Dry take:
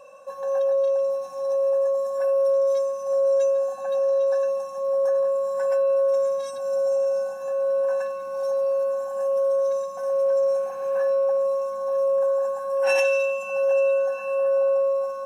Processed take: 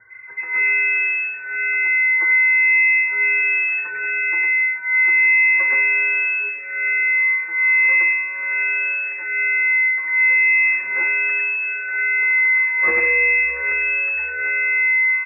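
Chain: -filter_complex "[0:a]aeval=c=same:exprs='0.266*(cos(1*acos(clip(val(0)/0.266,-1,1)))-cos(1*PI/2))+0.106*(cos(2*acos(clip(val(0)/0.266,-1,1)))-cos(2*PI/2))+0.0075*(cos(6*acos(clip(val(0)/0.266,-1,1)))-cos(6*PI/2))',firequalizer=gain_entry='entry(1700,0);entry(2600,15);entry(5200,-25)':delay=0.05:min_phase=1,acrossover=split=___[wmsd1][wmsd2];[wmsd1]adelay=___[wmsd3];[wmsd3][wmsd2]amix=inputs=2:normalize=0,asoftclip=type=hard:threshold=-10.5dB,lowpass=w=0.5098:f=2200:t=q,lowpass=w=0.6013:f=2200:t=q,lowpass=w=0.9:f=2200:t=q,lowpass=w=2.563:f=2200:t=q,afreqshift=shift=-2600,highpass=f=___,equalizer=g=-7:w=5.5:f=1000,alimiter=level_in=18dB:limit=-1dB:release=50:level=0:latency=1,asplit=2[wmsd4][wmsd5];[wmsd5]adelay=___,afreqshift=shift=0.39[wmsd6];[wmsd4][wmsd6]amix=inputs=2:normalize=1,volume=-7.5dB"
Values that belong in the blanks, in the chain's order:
860, 100, 220, 5.9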